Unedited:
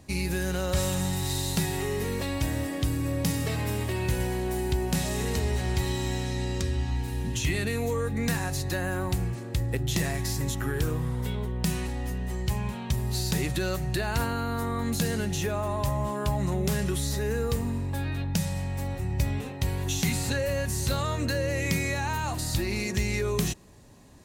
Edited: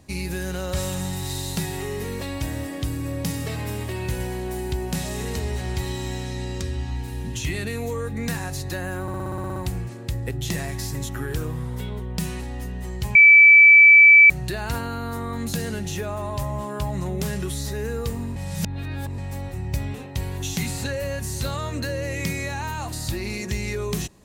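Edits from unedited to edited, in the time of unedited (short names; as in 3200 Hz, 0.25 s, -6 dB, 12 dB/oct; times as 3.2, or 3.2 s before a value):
9.02 stutter 0.06 s, 10 plays
12.61–13.76 bleep 2310 Hz -7 dBFS
17.82–18.64 reverse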